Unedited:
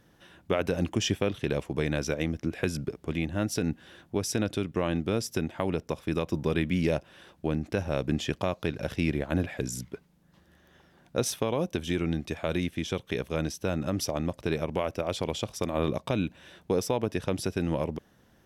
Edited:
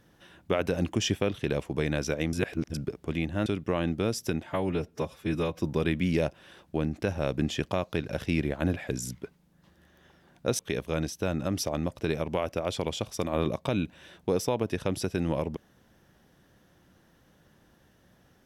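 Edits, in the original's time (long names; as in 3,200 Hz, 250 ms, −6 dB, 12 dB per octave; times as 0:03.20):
0:02.33–0:02.74: reverse
0:03.46–0:04.54: remove
0:05.55–0:06.31: time-stretch 1.5×
0:11.29–0:13.01: remove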